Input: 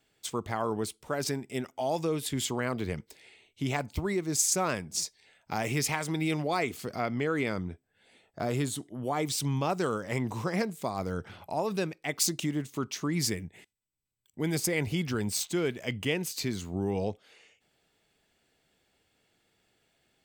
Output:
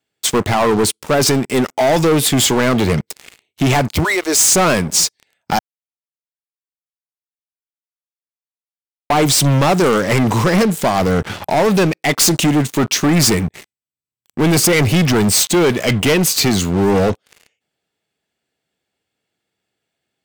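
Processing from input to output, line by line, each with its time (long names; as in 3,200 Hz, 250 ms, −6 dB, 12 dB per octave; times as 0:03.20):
0:04.03–0:04.50: high-pass filter 700 Hz → 270 Hz 24 dB per octave
0:05.59–0:09.10: silence
whole clip: high-pass filter 84 Hz 12 dB per octave; leveller curve on the samples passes 5; level +4.5 dB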